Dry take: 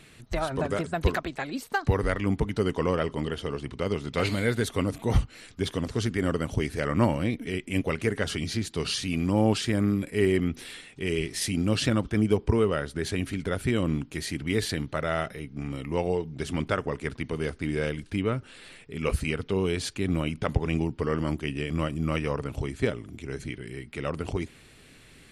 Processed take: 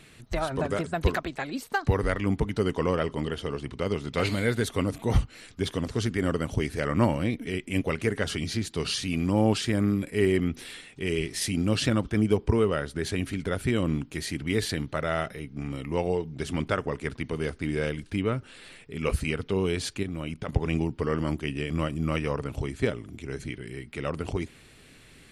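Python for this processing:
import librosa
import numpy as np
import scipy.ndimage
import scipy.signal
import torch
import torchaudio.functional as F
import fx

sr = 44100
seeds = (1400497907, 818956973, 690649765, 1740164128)

y = fx.level_steps(x, sr, step_db=11, at=(20.03, 20.53))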